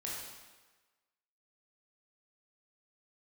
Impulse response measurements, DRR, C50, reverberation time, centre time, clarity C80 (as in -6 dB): -5.5 dB, 0.0 dB, 1.3 s, 79 ms, 2.5 dB